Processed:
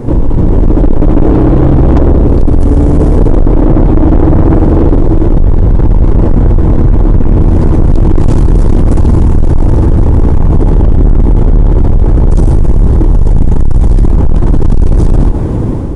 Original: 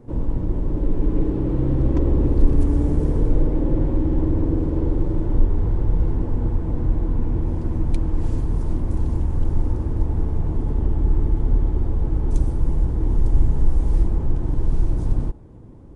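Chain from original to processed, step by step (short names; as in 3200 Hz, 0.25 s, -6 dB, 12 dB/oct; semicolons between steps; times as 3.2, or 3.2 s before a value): AGC; soft clip -16.5 dBFS, distortion -8 dB; maximiser +27 dB; gain -1 dB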